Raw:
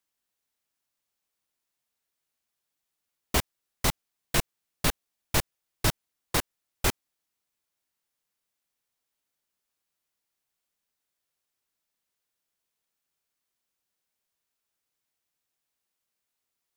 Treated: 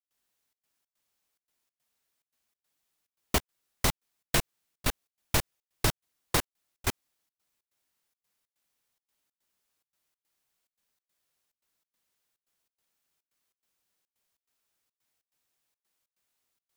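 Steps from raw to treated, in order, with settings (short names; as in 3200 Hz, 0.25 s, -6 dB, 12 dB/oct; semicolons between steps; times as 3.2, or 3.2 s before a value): compressor, threshold -25 dBFS, peak gain reduction 7.5 dB; step gate ".xxxx.xx" 142 bpm -24 dB; gain +3.5 dB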